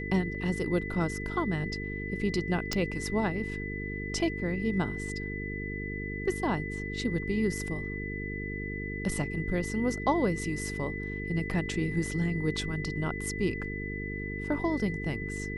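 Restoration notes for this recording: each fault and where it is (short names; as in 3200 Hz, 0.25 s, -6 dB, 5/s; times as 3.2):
buzz 50 Hz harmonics 9 -37 dBFS
tone 2000 Hz -38 dBFS
2.73 pop -14 dBFS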